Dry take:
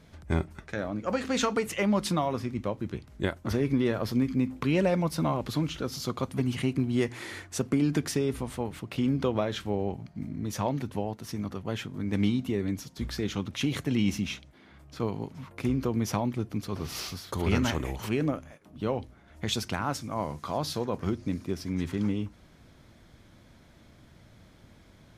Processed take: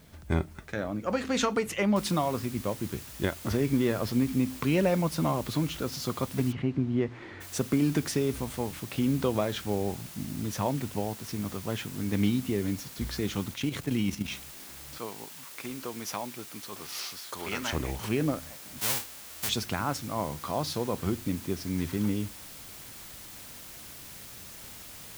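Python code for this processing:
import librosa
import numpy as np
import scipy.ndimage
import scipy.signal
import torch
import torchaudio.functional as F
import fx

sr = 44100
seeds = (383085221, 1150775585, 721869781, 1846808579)

y = fx.noise_floor_step(x, sr, seeds[0], at_s=1.96, before_db=-64, after_db=-46, tilt_db=0.0)
y = fx.spacing_loss(y, sr, db_at_10k=33, at=(6.51, 7.4), fade=0.02)
y = fx.level_steps(y, sr, step_db=9, at=(13.51, 14.32))
y = fx.highpass(y, sr, hz=930.0, slope=6, at=(14.98, 17.73))
y = fx.envelope_flatten(y, sr, power=0.1, at=(18.78, 19.48), fade=0.02)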